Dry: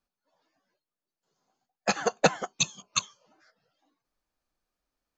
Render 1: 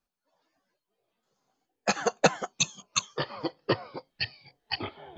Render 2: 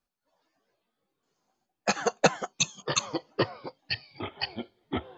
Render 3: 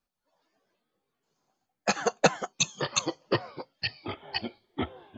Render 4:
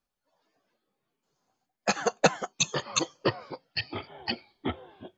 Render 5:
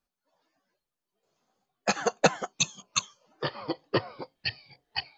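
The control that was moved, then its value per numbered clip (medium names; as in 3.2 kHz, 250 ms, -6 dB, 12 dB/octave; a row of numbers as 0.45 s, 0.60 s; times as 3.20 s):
ever faster or slower copies, time: 524 ms, 223 ms, 152 ms, 86 ms, 772 ms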